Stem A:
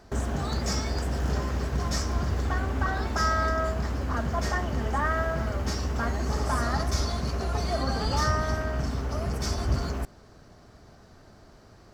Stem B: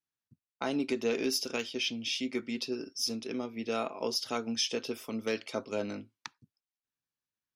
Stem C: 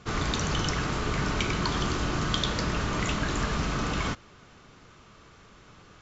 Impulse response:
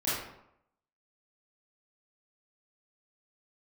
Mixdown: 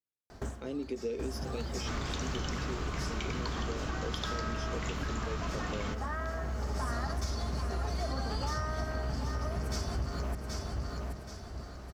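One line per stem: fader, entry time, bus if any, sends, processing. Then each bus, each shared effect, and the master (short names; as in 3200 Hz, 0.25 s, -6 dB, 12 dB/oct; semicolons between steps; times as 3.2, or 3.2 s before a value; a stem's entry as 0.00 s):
+1.5 dB, 0.30 s, no send, echo send -10 dB, auto duck -22 dB, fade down 0.25 s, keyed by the second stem
-12.5 dB, 0.00 s, no send, no echo send, resonant low shelf 620 Hz +6.5 dB, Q 3
-5.0 dB, 1.80 s, no send, no echo send, dry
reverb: off
echo: feedback echo 0.777 s, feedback 36%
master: compressor 6:1, threshold -31 dBFS, peak gain reduction 13 dB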